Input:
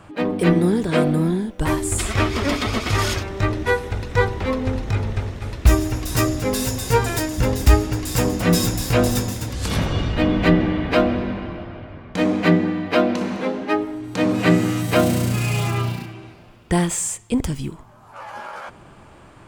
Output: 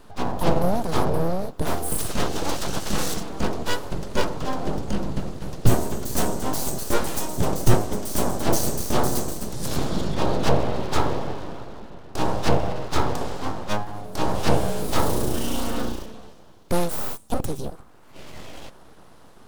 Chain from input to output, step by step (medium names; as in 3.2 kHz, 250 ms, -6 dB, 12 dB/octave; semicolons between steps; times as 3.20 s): formant shift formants +3 st; full-wave rectifier; peaking EQ 2.2 kHz -10 dB 1.3 oct